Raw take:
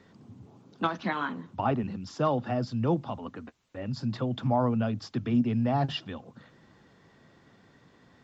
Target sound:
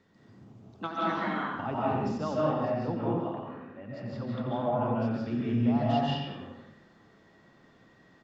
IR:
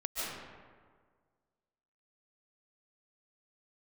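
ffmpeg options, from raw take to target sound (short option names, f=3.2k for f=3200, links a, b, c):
-filter_complex "[0:a]asettb=1/sr,asplit=3[a][b][c];[a]atrim=end=2.504[d];[b]atrim=start=2.5:end=5.15,asetpts=PTS-STARTPTS,afade=t=in:d=0.004:c=qsin,afade=t=out:st=2.646:d=0.004:c=qsin,bass=f=250:g=-3,treble=f=4k:g=-14[e];[c]atrim=start=5.146[f];[d][e]acrossfade=d=0.004:c1=hsin:c2=qsin[g];[g][f]acrossfade=d=0.004:c1=qsin:c2=hsin,asplit=2[h][i];[i]adelay=88,lowpass=f=4.3k:p=1,volume=-8.5dB,asplit=2[j][k];[k]adelay=88,lowpass=f=4.3k:p=1,volume=0.5,asplit=2[l][m];[m]adelay=88,lowpass=f=4.3k:p=1,volume=0.5,asplit=2[n][o];[o]adelay=88,lowpass=f=4.3k:p=1,volume=0.5,asplit=2[p][q];[q]adelay=88,lowpass=f=4.3k:p=1,volume=0.5,asplit=2[r][s];[s]adelay=88,lowpass=f=4.3k:p=1,volume=0.5[t];[h][j][l][n][p][r][t]amix=inputs=7:normalize=0[u];[1:a]atrim=start_sample=2205,afade=t=out:st=0.44:d=0.01,atrim=end_sample=19845[v];[u][v]afir=irnorm=-1:irlink=0,volume=-5.5dB"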